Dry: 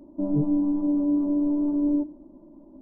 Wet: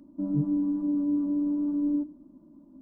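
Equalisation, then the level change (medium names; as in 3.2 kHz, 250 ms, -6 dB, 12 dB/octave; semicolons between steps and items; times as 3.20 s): high-pass 97 Hz 6 dB/octave; high-order bell 570 Hz -11.5 dB; 0.0 dB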